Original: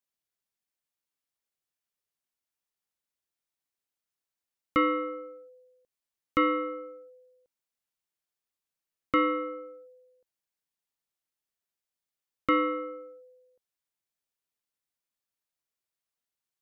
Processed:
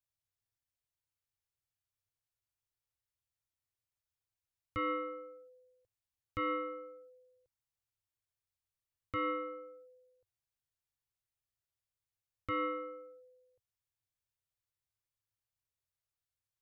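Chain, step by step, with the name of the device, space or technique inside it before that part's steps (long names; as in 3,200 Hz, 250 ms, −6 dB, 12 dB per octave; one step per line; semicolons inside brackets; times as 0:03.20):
car stereo with a boomy subwoofer (low shelf with overshoot 150 Hz +11.5 dB, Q 3; brickwall limiter −22.5 dBFS, peak gain reduction 10 dB)
level −5.5 dB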